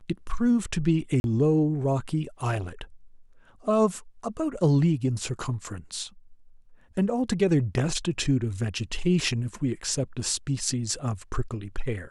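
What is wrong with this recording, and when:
1.20–1.24 s: dropout 41 ms

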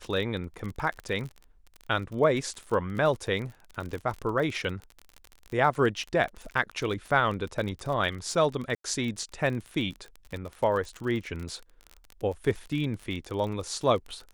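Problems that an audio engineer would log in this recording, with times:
crackle 39 per s -33 dBFS
8.75–8.84 s: dropout 93 ms

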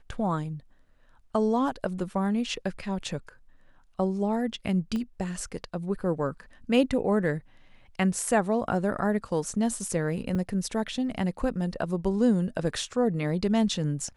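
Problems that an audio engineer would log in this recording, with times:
4.96 s: pop -21 dBFS
10.35 s: dropout 4.8 ms

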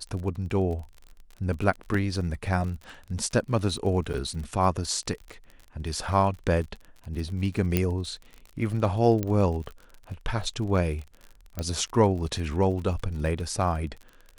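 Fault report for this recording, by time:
crackle 44 per s -35 dBFS
1.94 s: dropout 3.8 ms
4.13–4.14 s: dropout 8.7 ms
7.77 s: pop -9 dBFS
9.23 s: pop -15 dBFS
11.59 s: pop -16 dBFS

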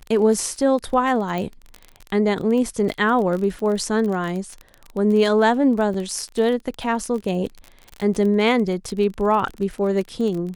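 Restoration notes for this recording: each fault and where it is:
crackle 28 per s -26 dBFS
1.38 s: pop -15 dBFS
5.94 s: dropout 3.6 ms

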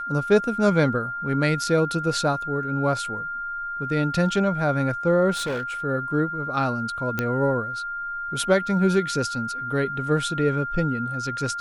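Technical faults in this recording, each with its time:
whine 1.4 kHz -28 dBFS
5.31–5.72 s: clipped -24 dBFS
7.19 s: pop -10 dBFS

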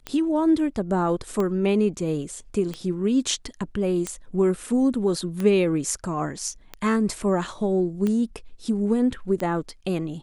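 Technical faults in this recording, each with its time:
tick 45 rpm -15 dBFS

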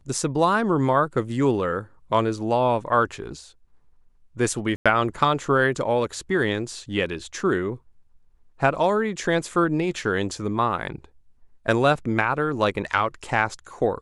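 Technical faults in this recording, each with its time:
4.76–4.86 s: dropout 96 ms

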